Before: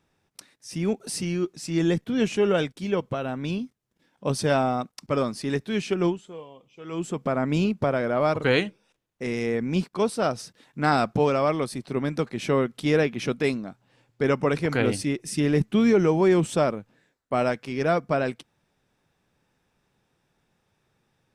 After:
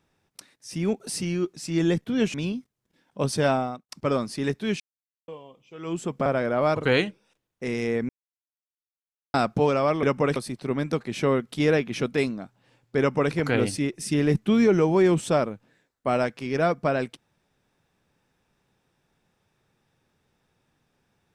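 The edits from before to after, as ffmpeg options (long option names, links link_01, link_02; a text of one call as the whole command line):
ffmpeg -i in.wav -filter_complex "[0:a]asplit=10[link_01][link_02][link_03][link_04][link_05][link_06][link_07][link_08][link_09][link_10];[link_01]atrim=end=2.342[link_11];[link_02]atrim=start=3.398:end=4.95,asetpts=PTS-STARTPTS,afade=type=out:start_time=1.182:duration=0.37[link_12];[link_03]atrim=start=4.95:end=5.86,asetpts=PTS-STARTPTS,afade=type=in:duration=0.004:curve=hsin,afade=type=out:start_time=0.906:duration=0.004:curve=hsin[link_13];[link_04]atrim=start=5.86:end=6.34,asetpts=PTS-STARTPTS,volume=0[link_14];[link_05]atrim=start=6.34:end=7.322,asetpts=PTS-STARTPTS,afade=type=in:duration=0.004:curve=hsin[link_15];[link_06]atrim=start=7.848:end=9.68,asetpts=PTS-STARTPTS,afade=type=out:start_time=1.828:duration=0.004:curve=hsin[link_16];[link_07]atrim=start=9.68:end=10.93,asetpts=PTS-STARTPTS,volume=0[link_17];[link_08]atrim=start=10.93:end=11.622,asetpts=PTS-STARTPTS,afade=type=in:duration=0.004:curve=hsin[link_18];[link_09]atrim=start=14.258:end=14.592[link_19];[link_10]atrim=start=11.618[link_20];[link_12][link_13][link_14][link_15]concat=n=4:v=0:a=1[link_21];[link_11][link_21]acrossfade=duration=0.004:curve1=hsin:curve2=hsin[link_22];[link_16][link_17][link_18]concat=n=3:v=0:a=1[link_23];[link_22][link_23]acrossfade=duration=0.004:curve1=hsin:curve2=hsin[link_24];[link_24][link_19]acrossfade=duration=0.004:curve1=hsin:curve2=hsin[link_25];[link_25][link_20]acrossfade=duration=0.004:curve1=hsin:curve2=hsin" out.wav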